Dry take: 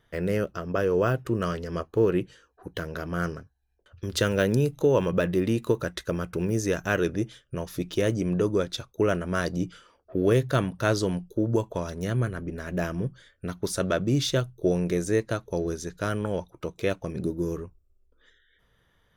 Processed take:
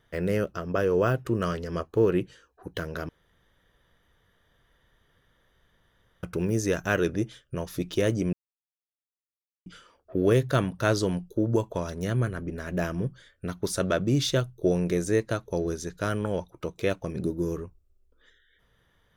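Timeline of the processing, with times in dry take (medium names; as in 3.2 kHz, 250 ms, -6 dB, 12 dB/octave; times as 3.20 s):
3.09–6.23 s: room tone
8.33–9.66 s: mute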